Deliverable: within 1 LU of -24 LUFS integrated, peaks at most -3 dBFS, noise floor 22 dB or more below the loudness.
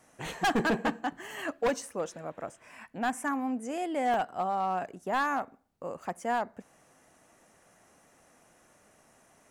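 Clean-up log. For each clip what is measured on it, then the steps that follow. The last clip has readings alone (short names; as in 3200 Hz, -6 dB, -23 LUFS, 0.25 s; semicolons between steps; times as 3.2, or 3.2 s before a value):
clipped 1.2%; flat tops at -22.5 dBFS; dropouts 1; longest dropout 1.5 ms; loudness -32.0 LUFS; peak -22.5 dBFS; loudness target -24.0 LUFS
-> clip repair -22.5 dBFS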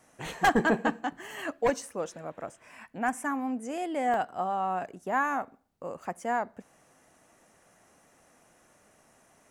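clipped 0.0%; dropouts 1; longest dropout 1.5 ms
-> interpolate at 4.14, 1.5 ms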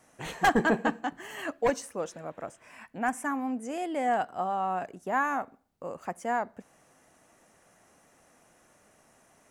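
dropouts 0; loudness -30.5 LUFS; peak -13.5 dBFS; loudness target -24.0 LUFS
-> gain +6.5 dB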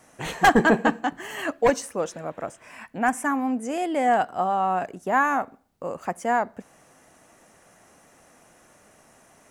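loudness -24.0 LUFS; peak -7.0 dBFS; noise floor -57 dBFS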